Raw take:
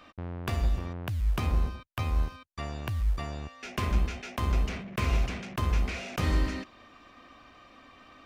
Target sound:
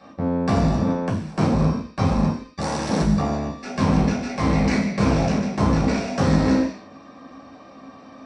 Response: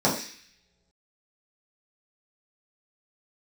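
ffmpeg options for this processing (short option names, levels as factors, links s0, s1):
-filter_complex "[0:a]asettb=1/sr,asplit=3[s0][s1][s2];[s0]atrim=end=0.864[s3];[s1]atrim=start=0.86:end=1.54,asetpts=PTS-STARTPTS,afade=t=in:d=0.004:c=qsin,afade=t=out:st=0.676:d=0.004:c=qsin,highpass=f=110:w=0.5412,highpass=f=110:w=1.3066[s4];[s2]atrim=start=1.536[s5];[s3][s4]acrossfade=d=0.004:c1=hsin:c2=qsin[s6];[s6][s5]acrossfade=d=0.004:c1=qsin:c2=hsin,asettb=1/sr,asplit=3[s7][s8][s9];[s7]atrim=end=4.294[s10];[s8]atrim=start=4.29:end=4.96,asetpts=PTS-STARTPTS,afade=t=in:d=0.004:c=qsin,afade=t=out:st=0.666:d=0.004:c=qsin,equalizer=f=2100:t=o:w=0.37:g=13[s11];[s9]atrim=start=4.956[s12];[s10][s11]acrossfade=d=0.004:c1=hsin:c2=qsin[s13];[s13][s12]acrossfade=d=0.004:c1=qsin:c2=hsin,alimiter=limit=0.0668:level=0:latency=1:release=13,aeval=exprs='0.0668*(cos(1*acos(clip(val(0)/0.0668,-1,1)))-cos(1*PI/2))+0.00944*(cos(3*acos(clip(val(0)/0.0668,-1,1)))-cos(3*PI/2))+0.0119*(cos(4*acos(clip(val(0)/0.0668,-1,1)))-cos(4*PI/2))':c=same,asplit=3[s14][s15][s16];[s14]afade=t=out:st=2.59:d=0.02[s17];[s15]aeval=exprs='(mod(28.2*val(0)+1,2)-1)/28.2':c=same,afade=t=in:st=2.59:d=0.02,afade=t=out:st=3.01:d=0.02[s18];[s16]afade=t=in:st=3.01:d=0.02[s19];[s17][s18][s19]amix=inputs=3:normalize=0,aresample=22050,aresample=44100[s20];[1:a]atrim=start_sample=2205,afade=t=out:st=0.31:d=0.01,atrim=end_sample=14112[s21];[s20][s21]afir=irnorm=-1:irlink=0,volume=0.708"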